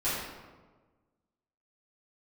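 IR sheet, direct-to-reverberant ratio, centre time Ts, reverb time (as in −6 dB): −14.0 dB, 85 ms, 1.4 s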